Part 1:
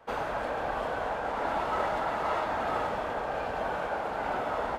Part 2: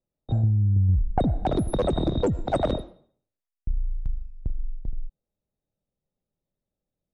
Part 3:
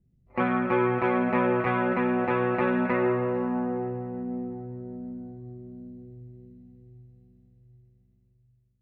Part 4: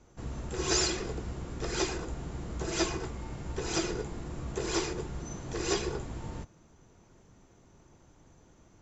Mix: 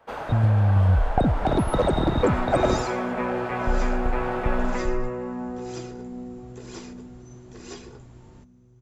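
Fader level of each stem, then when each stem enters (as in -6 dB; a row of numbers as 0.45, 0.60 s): -1.0, +2.0, -4.0, -10.5 dB; 0.00, 0.00, 1.85, 2.00 s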